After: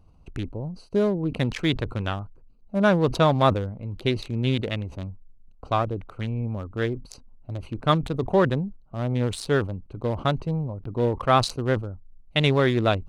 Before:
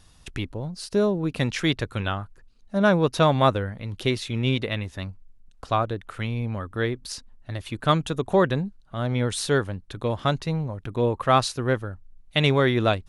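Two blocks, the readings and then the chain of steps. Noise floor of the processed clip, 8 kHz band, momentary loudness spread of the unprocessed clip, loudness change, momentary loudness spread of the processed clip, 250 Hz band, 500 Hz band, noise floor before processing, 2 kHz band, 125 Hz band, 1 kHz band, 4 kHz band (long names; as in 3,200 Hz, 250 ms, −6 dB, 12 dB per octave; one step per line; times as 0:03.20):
−52 dBFS, −6.5 dB, 14 LU, −0.5 dB, 14 LU, 0.0 dB, −0.5 dB, −54 dBFS, −2.0 dB, +0.5 dB, −0.5 dB, −1.5 dB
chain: adaptive Wiener filter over 25 samples
level that may fall only so fast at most 140 dB per second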